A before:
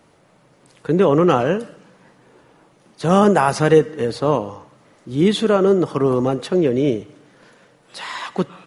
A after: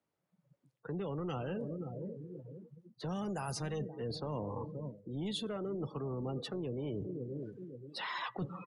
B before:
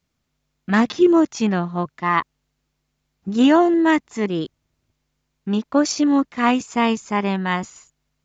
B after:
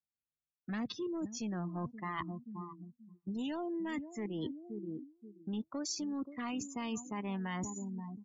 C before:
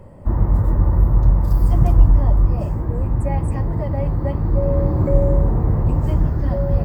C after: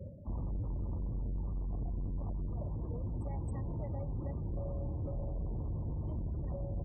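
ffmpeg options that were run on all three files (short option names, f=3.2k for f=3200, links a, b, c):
-filter_complex "[0:a]highpass=f=42:w=0.5412,highpass=f=42:w=1.3066,acrossover=split=140|3000[a][b][c];[b]acompressor=threshold=-26dB:ratio=5[d];[a][d][c]amix=inputs=3:normalize=0,asoftclip=type=tanh:threshold=-20dB,asplit=2[e][f];[f]adelay=528,lowpass=f=1.1k:p=1,volume=-14.5dB,asplit=2[g][h];[h]adelay=528,lowpass=f=1.1k:p=1,volume=0.47,asplit=2[i][j];[j]adelay=528,lowpass=f=1.1k:p=1,volume=0.47,asplit=2[k][l];[l]adelay=528,lowpass=f=1.1k:p=1,volume=0.47[m];[e][g][i][k][m]amix=inputs=5:normalize=0,afftdn=nr=35:nf=-37,areverse,acompressor=threshold=-40dB:ratio=6,areverse,volume=3dB"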